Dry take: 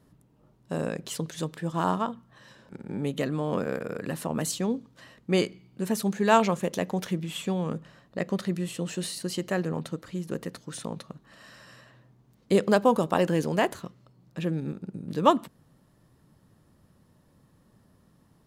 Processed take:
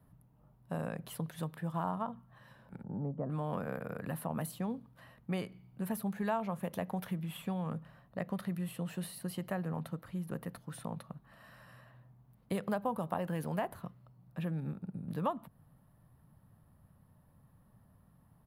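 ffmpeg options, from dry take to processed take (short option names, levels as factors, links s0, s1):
-filter_complex "[0:a]asettb=1/sr,asplit=3[s0][s1][s2];[s0]atrim=end=2.834[s3];[s1]atrim=start=2.83:end=3.3,asetpts=PTS-STARTPTS,afade=t=in:d=0.004:c=qsin,afade=t=out:st=0.466:d=0.004:c=qsin,lowpass=f=1000:w=0.5412,lowpass=f=1000:w=1.3066[s4];[s2]atrim=start=3.296[s5];[s3][s4]acrossfade=d=0.004:c1=hsin:c2=qsin[s6];[s6][s5]acrossfade=d=0.004:c1=qsin:c2=hsin,firequalizer=gain_entry='entry(120,0);entry(350,-13);entry(700,-2);entry(2000,-8);entry(6700,-21);entry(11000,-1)':delay=0.05:min_phase=1,acrossover=split=110|1100[s7][s8][s9];[s7]acompressor=threshold=0.00158:ratio=4[s10];[s8]acompressor=threshold=0.0224:ratio=4[s11];[s9]acompressor=threshold=0.00631:ratio=4[s12];[s10][s11][s12]amix=inputs=3:normalize=0"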